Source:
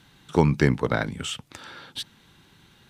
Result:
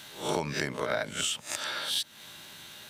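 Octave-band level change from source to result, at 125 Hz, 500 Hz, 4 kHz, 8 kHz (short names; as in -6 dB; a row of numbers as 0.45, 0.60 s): -16.5, -6.5, +4.0, +6.5 dB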